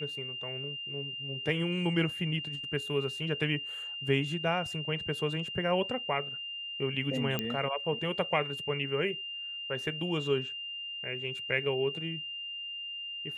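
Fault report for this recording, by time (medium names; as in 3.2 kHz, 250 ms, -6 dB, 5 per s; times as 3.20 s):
whine 2.8 kHz -37 dBFS
7.39 s: pop -16 dBFS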